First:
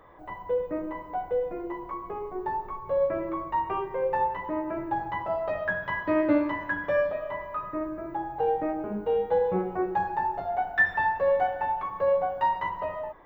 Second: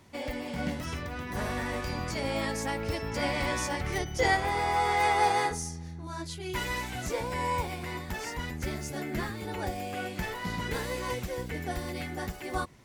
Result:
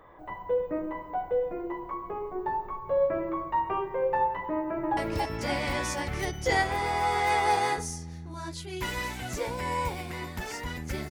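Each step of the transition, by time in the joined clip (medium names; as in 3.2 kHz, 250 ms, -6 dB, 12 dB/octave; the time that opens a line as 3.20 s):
first
4.55–4.97 s: echo throw 280 ms, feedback 35%, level -2.5 dB
4.97 s: go over to second from 2.70 s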